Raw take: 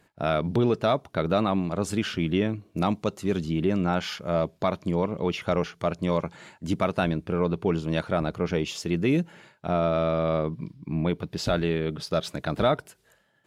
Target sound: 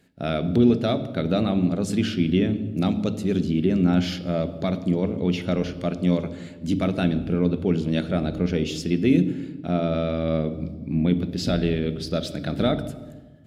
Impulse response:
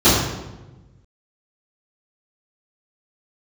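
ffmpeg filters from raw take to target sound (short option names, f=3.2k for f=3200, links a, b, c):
-filter_complex "[0:a]equalizer=f=250:t=o:w=0.67:g=7,equalizer=f=1k:t=o:w=0.67:g=-12,equalizer=f=4k:t=o:w=0.67:g=3,asplit=2[a][b];[1:a]atrim=start_sample=2205,asetrate=34839,aresample=44100[c];[b][c]afir=irnorm=-1:irlink=0,volume=-37dB[d];[a][d]amix=inputs=2:normalize=0"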